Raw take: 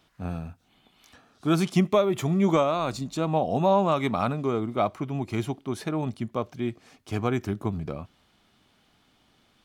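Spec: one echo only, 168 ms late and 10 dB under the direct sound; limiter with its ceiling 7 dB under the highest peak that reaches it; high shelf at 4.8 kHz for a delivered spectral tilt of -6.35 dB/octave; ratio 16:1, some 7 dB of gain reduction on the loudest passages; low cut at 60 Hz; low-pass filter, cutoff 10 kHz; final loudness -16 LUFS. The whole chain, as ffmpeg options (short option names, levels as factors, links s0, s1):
-af "highpass=60,lowpass=10000,highshelf=f=4800:g=-5.5,acompressor=threshold=0.0708:ratio=16,alimiter=limit=0.0891:level=0:latency=1,aecho=1:1:168:0.316,volume=6.31"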